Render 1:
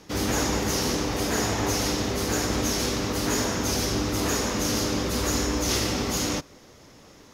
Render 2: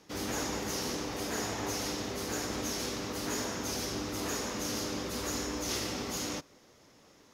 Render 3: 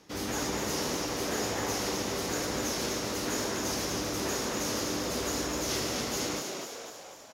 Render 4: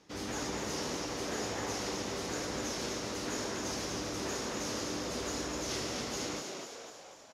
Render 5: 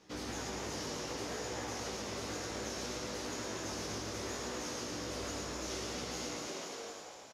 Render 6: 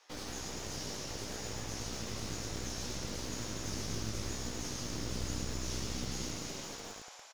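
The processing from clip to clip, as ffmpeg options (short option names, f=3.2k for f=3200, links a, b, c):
-af "lowshelf=f=110:g=-9,volume=-8.5dB"
-filter_complex "[0:a]asplit=9[a][b][c][d][e][f][g][h][i];[b]adelay=248,afreqshift=83,volume=-4.5dB[j];[c]adelay=496,afreqshift=166,volume=-9.4dB[k];[d]adelay=744,afreqshift=249,volume=-14.3dB[l];[e]adelay=992,afreqshift=332,volume=-19.1dB[m];[f]adelay=1240,afreqshift=415,volume=-24dB[n];[g]adelay=1488,afreqshift=498,volume=-28.9dB[o];[h]adelay=1736,afreqshift=581,volume=-33.8dB[p];[i]adelay=1984,afreqshift=664,volume=-38.7dB[q];[a][j][k][l][m][n][o][p][q]amix=inputs=9:normalize=0,volume=1.5dB"
-af "lowpass=8.7k,volume=-4.5dB"
-filter_complex "[0:a]flanger=delay=16:depth=3.6:speed=0.65,acompressor=threshold=-42dB:ratio=4,asplit=2[a][b];[b]aecho=0:1:112:0.562[c];[a][c]amix=inputs=2:normalize=0,volume=3.5dB"
-filter_complex "[0:a]asubboost=boost=5:cutoff=210,acrossover=split=580|3100[a][b][c];[a]acrusher=bits=5:dc=4:mix=0:aa=0.000001[d];[b]alimiter=level_in=23dB:limit=-24dB:level=0:latency=1,volume=-23dB[e];[d][e][c]amix=inputs=3:normalize=0,volume=1.5dB"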